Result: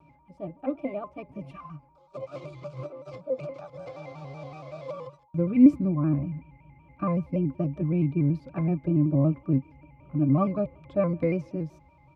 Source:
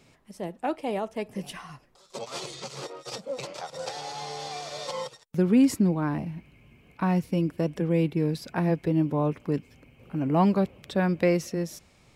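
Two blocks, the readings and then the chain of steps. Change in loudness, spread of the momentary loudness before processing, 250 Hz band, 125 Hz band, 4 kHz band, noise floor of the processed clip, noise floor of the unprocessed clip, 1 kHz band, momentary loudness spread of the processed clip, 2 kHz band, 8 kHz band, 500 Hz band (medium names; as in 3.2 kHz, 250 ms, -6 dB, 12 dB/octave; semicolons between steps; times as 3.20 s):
+1.5 dB, 15 LU, +1.0 dB, +2.0 dB, under -20 dB, -59 dBFS, -60 dBFS, -6.5 dB, 18 LU, no reading, under -25 dB, -2.0 dB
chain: speakerphone echo 160 ms, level -29 dB; whistle 890 Hz -45 dBFS; pitch-class resonator C#, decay 0.1 s; vibrato with a chosen wave square 5.3 Hz, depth 100 cents; trim +7.5 dB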